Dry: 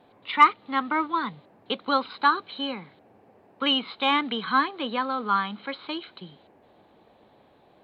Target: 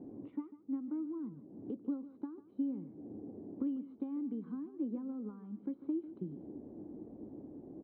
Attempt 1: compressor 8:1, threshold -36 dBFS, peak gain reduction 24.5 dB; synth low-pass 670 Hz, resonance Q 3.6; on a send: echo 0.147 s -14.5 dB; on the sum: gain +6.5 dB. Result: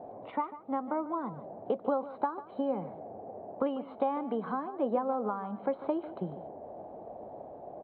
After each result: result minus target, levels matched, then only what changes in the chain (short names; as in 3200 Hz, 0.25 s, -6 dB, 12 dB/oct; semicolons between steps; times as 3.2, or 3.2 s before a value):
500 Hz band +9.5 dB; compressor: peak gain reduction -9 dB
change: synth low-pass 300 Hz, resonance Q 3.6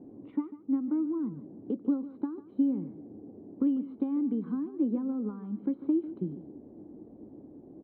compressor: peak gain reduction -9 dB
change: compressor 8:1, threshold -46.5 dBFS, peak gain reduction 33.5 dB